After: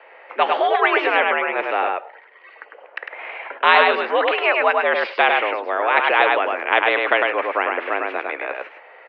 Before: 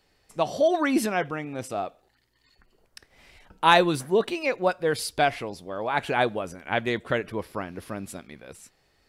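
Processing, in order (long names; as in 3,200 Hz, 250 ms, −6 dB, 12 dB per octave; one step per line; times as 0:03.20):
on a send: single-tap delay 102 ms −5 dB
on the sum: single-sideband voice off tune +82 Hz 390–2,400 Hz
every bin compressed towards the loudest bin 2 to 1
level +4.5 dB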